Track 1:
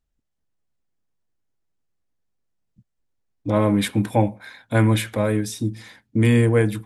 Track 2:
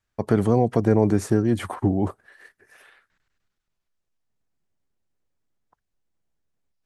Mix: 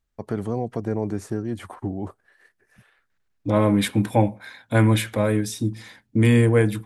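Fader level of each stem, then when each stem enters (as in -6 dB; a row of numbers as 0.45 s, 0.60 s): 0.0 dB, -7.5 dB; 0.00 s, 0.00 s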